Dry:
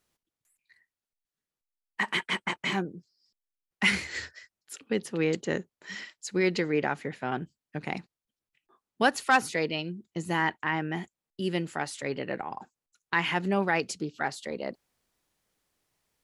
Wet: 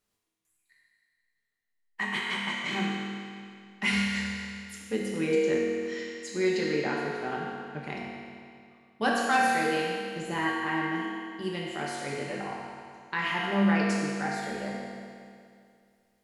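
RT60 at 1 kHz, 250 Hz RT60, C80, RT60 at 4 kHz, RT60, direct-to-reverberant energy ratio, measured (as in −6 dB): 2.3 s, 2.3 s, 0.5 dB, 2.2 s, 2.3 s, −4.0 dB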